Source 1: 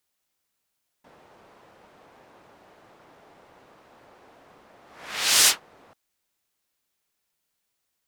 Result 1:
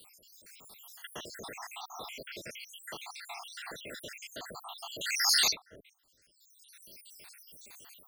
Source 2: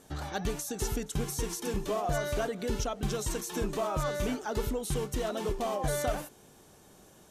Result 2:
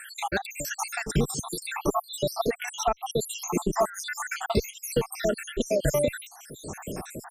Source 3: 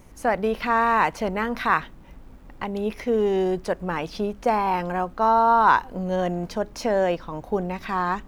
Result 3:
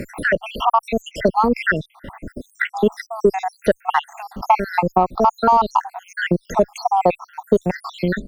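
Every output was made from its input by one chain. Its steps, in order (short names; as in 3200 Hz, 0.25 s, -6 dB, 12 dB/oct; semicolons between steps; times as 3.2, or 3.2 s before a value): random spectral dropouts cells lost 79%; dynamic EQ 810 Hz, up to +5 dB, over -45 dBFS, Q 4.3; AGC gain up to 5 dB; added harmonics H 7 -36 dB, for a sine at -3.5 dBFS; maximiser +9.5 dB; three-band squash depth 70%; gain -2.5 dB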